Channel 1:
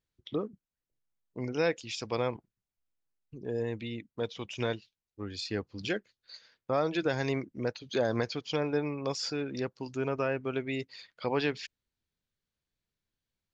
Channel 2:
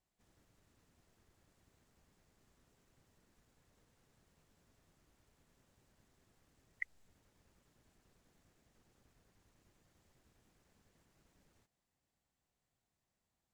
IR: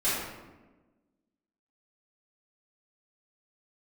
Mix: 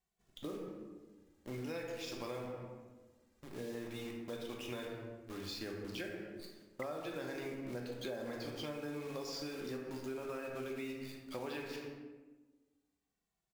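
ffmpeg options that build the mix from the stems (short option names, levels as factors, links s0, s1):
-filter_complex "[0:a]acrusher=bits=8:dc=4:mix=0:aa=0.000001,adelay=100,volume=0.335,asplit=2[s0][s1];[s1]volume=0.376[s2];[1:a]asplit=2[s3][s4];[s4]adelay=2.2,afreqshift=-0.53[s5];[s3][s5]amix=inputs=2:normalize=1,volume=1.12[s6];[2:a]atrim=start_sample=2205[s7];[s2][s7]afir=irnorm=-1:irlink=0[s8];[s0][s6][s8]amix=inputs=3:normalize=0,acompressor=threshold=0.0112:ratio=6"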